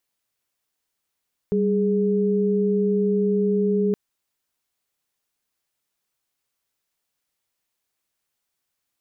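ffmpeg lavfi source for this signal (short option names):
-f lavfi -i "aevalsrc='0.0944*(sin(2*PI*196*t)+sin(2*PI*415.3*t))':d=2.42:s=44100"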